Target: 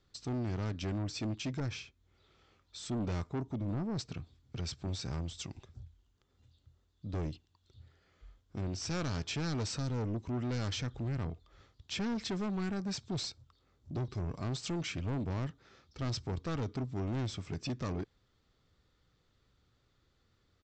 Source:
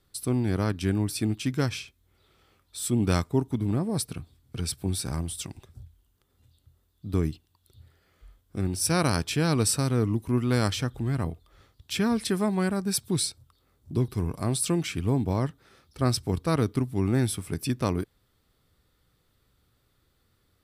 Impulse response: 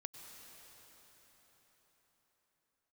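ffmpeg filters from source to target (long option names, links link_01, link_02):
-filter_complex "[0:a]asoftclip=type=tanh:threshold=-28dB,aresample=16000,aresample=44100,asettb=1/sr,asplit=3[link_01][link_02][link_03];[link_01]atrim=end=1.604[link_04];[link_02]atrim=start=1.6:end=3.99,asetpts=PTS-STARTPTS,afade=type=in:duration=0.004:curve=qsin,afade=type=out:start_time=2.386:duration=0.004:curve=qsin,adynamicequalizer=threshold=0.00251:dfrequency=2000:dqfactor=0.7:tfrequency=2000:tqfactor=0.7:attack=5:release=100:ratio=0.375:range=2:mode=cutabove:tftype=highshelf[link_05];[link_03]atrim=start=3.986[link_06];[link_04][link_05]acrossfade=duration=0.004:curve1=hsin:curve2=qsin[link_07];[link_07][link_06]acrossfade=duration=0.004:curve1=qsin:curve2=hsin,volume=-3.5dB"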